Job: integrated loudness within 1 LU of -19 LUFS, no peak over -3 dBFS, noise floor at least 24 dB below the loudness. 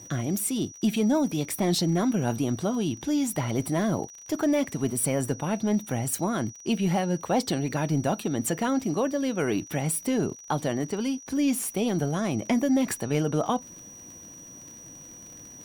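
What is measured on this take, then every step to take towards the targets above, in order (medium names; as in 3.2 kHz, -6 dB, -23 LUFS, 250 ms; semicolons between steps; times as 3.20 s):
tick rate 37 per s; steady tone 5.8 kHz; tone level -44 dBFS; loudness -27.0 LUFS; peak level -14.0 dBFS; loudness target -19.0 LUFS
-> de-click; band-stop 5.8 kHz, Q 30; trim +8 dB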